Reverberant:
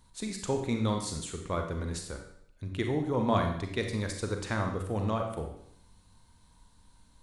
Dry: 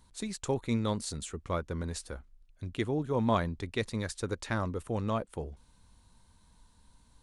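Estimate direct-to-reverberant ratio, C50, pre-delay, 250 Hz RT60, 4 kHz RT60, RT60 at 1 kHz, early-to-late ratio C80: 3.0 dB, 5.5 dB, 34 ms, 0.70 s, 0.70 s, 0.70 s, 8.5 dB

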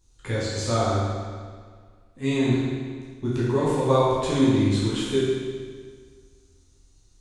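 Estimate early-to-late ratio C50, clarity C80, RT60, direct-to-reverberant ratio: -2.5 dB, 0.0 dB, 1.8 s, -9.0 dB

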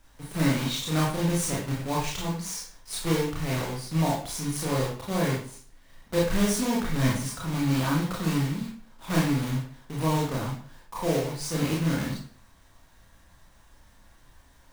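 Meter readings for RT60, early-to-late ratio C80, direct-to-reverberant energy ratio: 0.45 s, 8.5 dB, -4.5 dB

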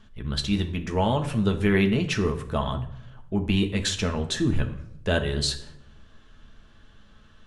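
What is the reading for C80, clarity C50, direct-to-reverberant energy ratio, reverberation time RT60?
14.5 dB, 12.0 dB, 4.0 dB, 0.80 s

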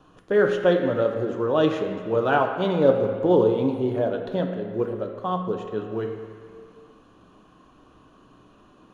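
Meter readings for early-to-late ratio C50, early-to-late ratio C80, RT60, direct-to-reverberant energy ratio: 5.5 dB, 7.0 dB, not exponential, 2.5 dB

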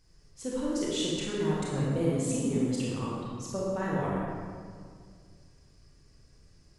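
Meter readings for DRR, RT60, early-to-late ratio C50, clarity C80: -6.0 dB, 2.1 s, -3.0 dB, -0.5 dB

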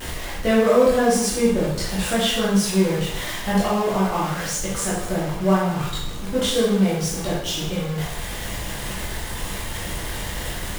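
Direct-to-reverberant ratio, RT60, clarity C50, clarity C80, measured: -8.5 dB, 0.80 s, 0.5 dB, 5.0 dB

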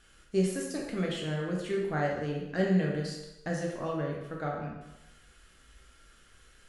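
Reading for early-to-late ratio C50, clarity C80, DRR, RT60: 2.0 dB, 5.0 dB, -2.0 dB, 0.95 s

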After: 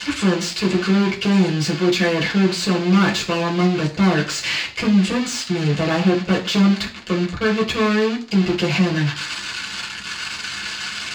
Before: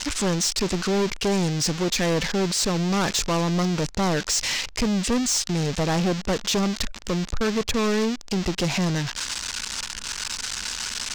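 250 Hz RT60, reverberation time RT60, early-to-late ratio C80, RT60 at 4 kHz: 0.40 s, 0.40 s, 17.0 dB, 0.40 s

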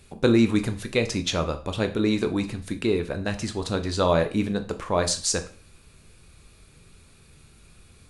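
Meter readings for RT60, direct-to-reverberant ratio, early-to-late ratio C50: 0.40 s, 7.0 dB, 13.5 dB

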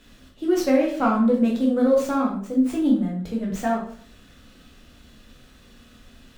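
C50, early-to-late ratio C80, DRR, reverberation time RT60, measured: 5.0 dB, 9.5 dB, -2.5 dB, 0.50 s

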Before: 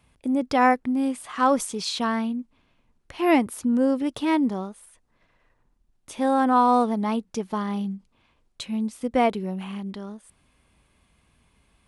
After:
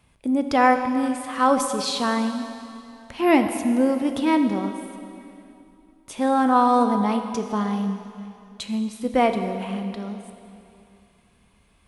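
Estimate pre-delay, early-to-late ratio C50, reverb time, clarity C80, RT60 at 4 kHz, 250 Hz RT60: 6 ms, 7.5 dB, 2.7 s, 8.0 dB, 2.5 s, 2.9 s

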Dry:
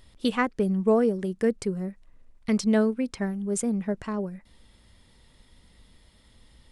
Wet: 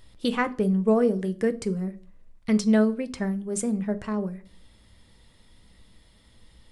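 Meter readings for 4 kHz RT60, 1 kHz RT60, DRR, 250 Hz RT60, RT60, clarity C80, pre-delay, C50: 0.35 s, 0.40 s, 10.0 dB, 0.55 s, 0.45 s, 24.5 dB, 6 ms, 20.0 dB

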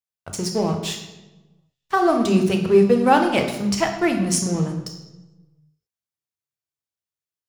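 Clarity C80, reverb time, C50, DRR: 9.5 dB, 1.1 s, 7.5 dB, 3.5 dB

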